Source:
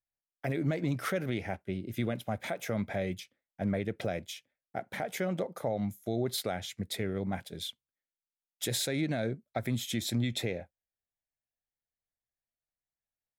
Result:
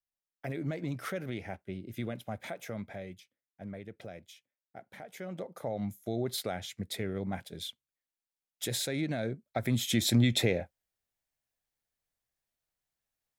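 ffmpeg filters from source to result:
-af "volume=4.47,afade=t=out:st=2.48:d=0.69:silence=0.446684,afade=t=in:st=5.12:d=0.79:silence=0.316228,afade=t=in:st=9.42:d=0.65:silence=0.421697"

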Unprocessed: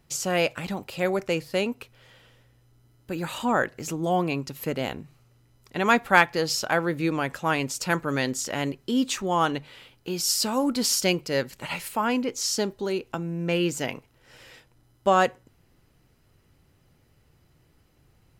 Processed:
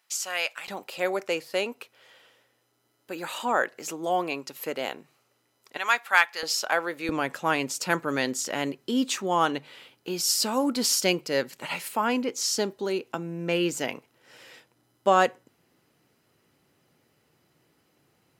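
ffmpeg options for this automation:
-af "asetnsamples=n=441:p=0,asendcmd='0.68 highpass f 400;5.77 highpass f 1100;6.43 highpass f 520;7.09 highpass f 210',highpass=1100"

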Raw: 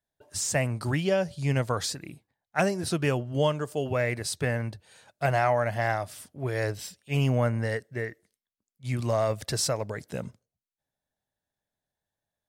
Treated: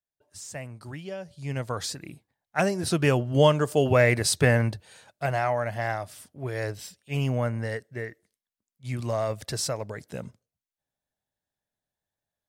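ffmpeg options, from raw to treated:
-af "volume=2.37,afade=t=in:st=1.25:d=0.85:silence=0.251189,afade=t=in:st=2.63:d=1.14:silence=0.446684,afade=t=out:st=4.61:d=0.63:silence=0.334965"

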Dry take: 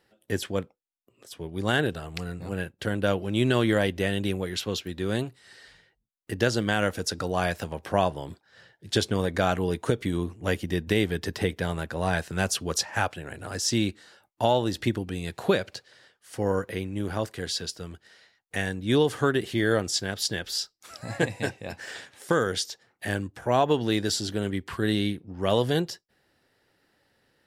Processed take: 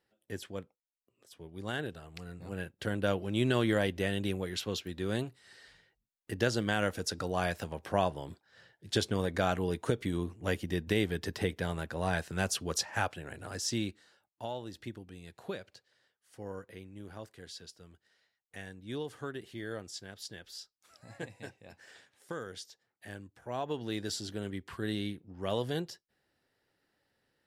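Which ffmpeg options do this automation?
-af "volume=1.19,afade=t=in:st=2.18:d=0.66:silence=0.473151,afade=t=out:st=13.34:d=1.09:silence=0.281838,afade=t=in:st=23.41:d=0.72:silence=0.446684"

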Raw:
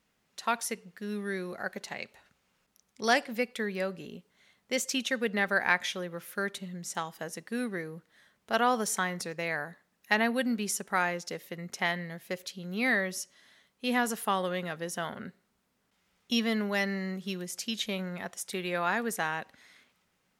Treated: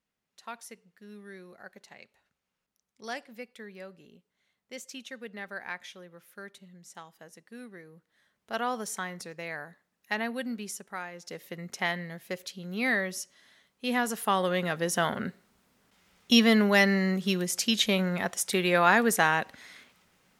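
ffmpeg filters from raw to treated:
-af "volume=5.62,afade=t=in:st=7.82:d=0.74:silence=0.446684,afade=t=out:st=10.56:d=0.55:silence=0.446684,afade=t=in:st=11.11:d=0.37:silence=0.251189,afade=t=in:st=14.09:d=0.93:silence=0.398107"

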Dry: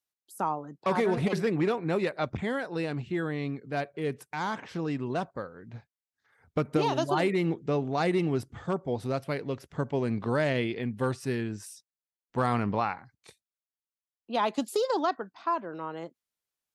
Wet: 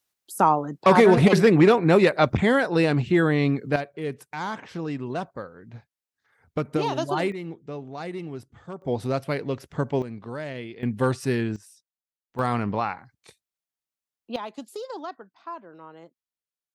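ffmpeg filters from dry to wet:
-af "asetnsamples=n=441:p=0,asendcmd='3.76 volume volume 1dB;7.32 volume volume -7.5dB;8.82 volume volume 4.5dB;10.02 volume volume -7dB;10.83 volume volume 6dB;11.56 volume volume -6.5dB;12.39 volume volume 2dB;14.36 volume volume -8dB',volume=3.55"

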